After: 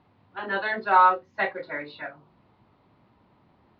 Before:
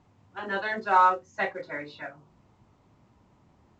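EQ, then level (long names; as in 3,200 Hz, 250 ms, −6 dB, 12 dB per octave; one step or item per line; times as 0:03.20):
Chebyshev low-pass filter 4,300 Hz, order 4
low-shelf EQ 110 Hz −9 dB
+3.0 dB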